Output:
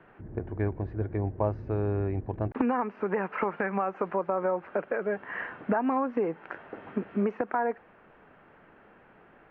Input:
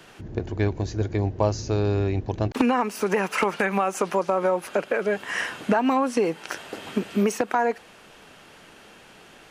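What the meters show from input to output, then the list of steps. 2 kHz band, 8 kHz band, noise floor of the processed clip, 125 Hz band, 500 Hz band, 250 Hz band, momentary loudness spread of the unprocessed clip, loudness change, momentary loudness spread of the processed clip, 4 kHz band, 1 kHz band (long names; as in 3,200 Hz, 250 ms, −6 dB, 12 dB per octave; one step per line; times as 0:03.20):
−7.5 dB, below −40 dB, −57 dBFS, −5.5 dB, −5.5 dB, −5.5 dB, 8 LU, −5.5 dB, 9 LU, below −20 dB, −5.5 dB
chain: low-pass filter 1,900 Hz 24 dB per octave
level −5.5 dB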